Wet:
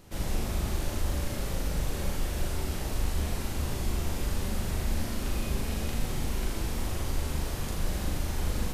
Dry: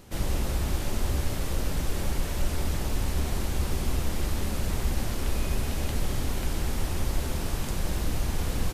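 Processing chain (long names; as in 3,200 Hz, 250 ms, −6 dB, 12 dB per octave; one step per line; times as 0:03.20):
flutter between parallel walls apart 6.8 metres, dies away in 0.56 s
level −4 dB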